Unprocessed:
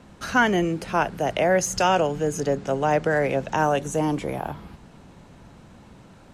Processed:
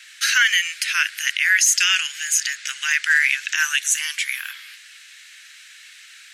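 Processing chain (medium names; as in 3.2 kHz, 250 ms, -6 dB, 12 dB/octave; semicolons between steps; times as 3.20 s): steep high-pass 1.7 kHz 48 dB/octave; loudness maximiser +23 dB; trim -5.5 dB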